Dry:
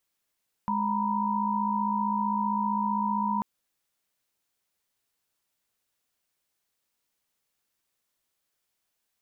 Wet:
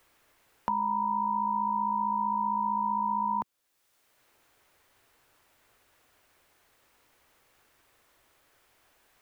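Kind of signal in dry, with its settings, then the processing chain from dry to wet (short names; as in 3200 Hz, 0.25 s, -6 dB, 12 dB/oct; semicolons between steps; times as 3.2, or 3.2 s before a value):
chord G#3/A#5/B5 sine, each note -29 dBFS 2.74 s
bell 190 Hz -11 dB 0.46 oct; three-band squash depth 70%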